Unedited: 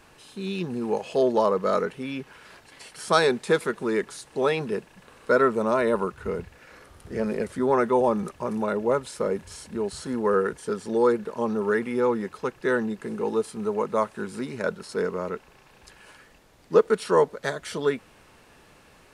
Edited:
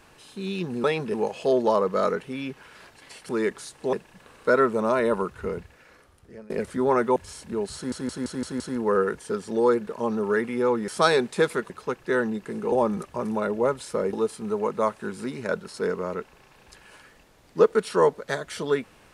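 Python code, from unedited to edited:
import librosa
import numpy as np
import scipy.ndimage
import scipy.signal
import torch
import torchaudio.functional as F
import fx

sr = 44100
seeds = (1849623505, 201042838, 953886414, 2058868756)

y = fx.edit(x, sr, fx.move(start_s=2.99, length_s=0.82, to_s=12.26),
    fx.move(start_s=4.45, length_s=0.3, to_s=0.84),
    fx.fade_out_to(start_s=6.23, length_s=1.09, floor_db=-24.0),
    fx.move(start_s=7.98, length_s=1.41, to_s=13.28),
    fx.stutter(start_s=9.98, slice_s=0.17, count=6), tone=tone)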